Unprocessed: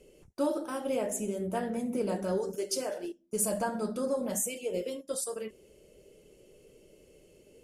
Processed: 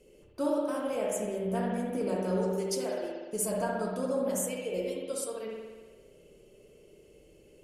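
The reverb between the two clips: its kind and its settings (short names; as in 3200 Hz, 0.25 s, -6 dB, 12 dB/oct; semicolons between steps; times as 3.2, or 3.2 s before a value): spring tank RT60 1.4 s, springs 59 ms, chirp 30 ms, DRR -1 dB; gain -2.5 dB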